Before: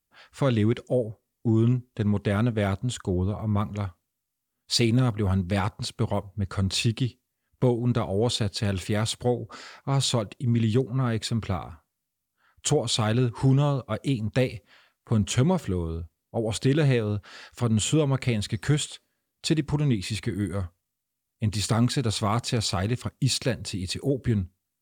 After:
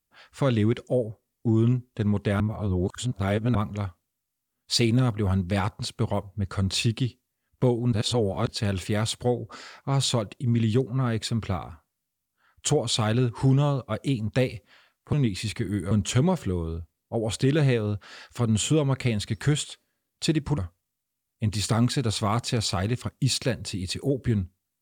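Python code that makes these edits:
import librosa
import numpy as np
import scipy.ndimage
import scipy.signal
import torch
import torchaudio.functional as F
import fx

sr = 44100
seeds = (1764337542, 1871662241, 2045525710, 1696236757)

y = fx.edit(x, sr, fx.reverse_span(start_s=2.4, length_s=1.15),
    fx.reverse_span(start_s=7.93, length_s=0.56),
    fx.move(start_s=19.8, length_s=0.78, to_s=15.13), tone=tone)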